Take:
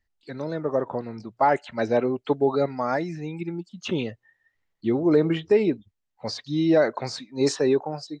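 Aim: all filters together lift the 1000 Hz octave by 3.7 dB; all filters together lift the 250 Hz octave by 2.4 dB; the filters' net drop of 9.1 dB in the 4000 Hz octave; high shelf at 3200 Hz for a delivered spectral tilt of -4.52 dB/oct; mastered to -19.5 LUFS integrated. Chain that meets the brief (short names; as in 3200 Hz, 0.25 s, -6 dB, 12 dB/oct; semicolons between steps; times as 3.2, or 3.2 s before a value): bell 250 Hz +3 dB; bell 1000 Hz +5.5 dB; high shelf 3200 Hz -6 dB; bell 4000 Hz -7.5 dB; gain +3.5 dB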